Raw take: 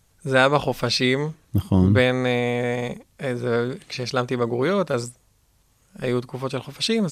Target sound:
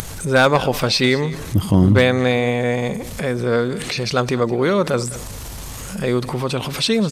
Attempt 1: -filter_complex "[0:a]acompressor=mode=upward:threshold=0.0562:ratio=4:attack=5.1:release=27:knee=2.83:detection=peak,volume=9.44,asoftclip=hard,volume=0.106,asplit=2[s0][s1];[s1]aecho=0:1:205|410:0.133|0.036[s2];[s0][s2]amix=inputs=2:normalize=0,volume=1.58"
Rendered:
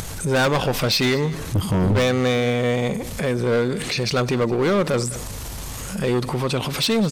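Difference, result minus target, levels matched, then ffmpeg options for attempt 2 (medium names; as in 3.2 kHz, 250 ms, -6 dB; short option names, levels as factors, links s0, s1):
overload inside the chain: distortion +14 dB
-filter_complex "[0:a]acompressor=mode=upward:threshold=0.0562:ratio=4:attack=5.1:release=27:knee=2.83:detection=peak,volume=2.82,asoftclip=hard,volume=0.355,asplit=2[s0][s1];[s1]aecho=0:1:205|410:0.133|0.036[s2];[s0][s2]amix=inputs=2:normalize=0,volume=1.58"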